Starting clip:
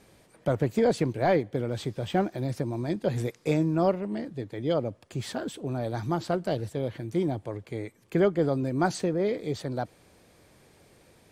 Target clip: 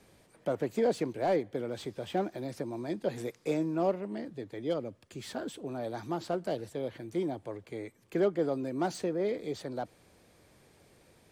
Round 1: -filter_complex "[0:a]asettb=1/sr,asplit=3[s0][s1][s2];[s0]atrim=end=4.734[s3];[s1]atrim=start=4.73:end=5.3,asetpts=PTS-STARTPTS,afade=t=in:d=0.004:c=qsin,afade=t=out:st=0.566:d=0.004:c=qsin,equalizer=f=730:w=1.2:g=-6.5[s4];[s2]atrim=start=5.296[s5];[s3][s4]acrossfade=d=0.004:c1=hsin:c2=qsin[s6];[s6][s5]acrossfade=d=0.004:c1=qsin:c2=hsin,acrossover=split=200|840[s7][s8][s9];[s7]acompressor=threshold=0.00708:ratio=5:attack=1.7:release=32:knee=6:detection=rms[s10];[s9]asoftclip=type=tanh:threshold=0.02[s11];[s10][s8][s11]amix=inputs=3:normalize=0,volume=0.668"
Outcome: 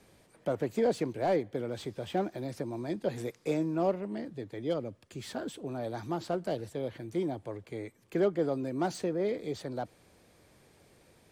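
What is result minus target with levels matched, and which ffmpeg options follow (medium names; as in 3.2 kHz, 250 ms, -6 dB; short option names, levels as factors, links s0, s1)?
compression: peak gain reduction -5 dB
-filter_complex "[0:a]asettb=1/sr,asplit=3[s0][s1][s2];[s0]atrim=end=4.734[s3];[s1]atrim=start=4.73:end=5.3,asetpts=PTS-STARTPTS,afade=t=in:d=0.004:c=qsin,afade=t=out:st=0.566:d=0.004:c=qsin,equalizer=f=730:w=1.2:g=-6.5[s4];[s2]atrim=start=5.296[s5];[s3][s4]acrossfade=d=0.004:c1=hsin:c2=qsin[s6];[s6][s5]acrossfade=d=0.004:c1=qsin:c2=hsin,acrossover=split=200|840[s7][s8][s9];[s7]acompressor=threshold=0.00355:ratio=5:attack=1.7:release=32:knee=6:detection=rms[s10];[s9]asoftclip=type=tanh:threshold=0.02[s11];[s10][s8][s11]amix=inputs=3:normalize=0,volume=0.668"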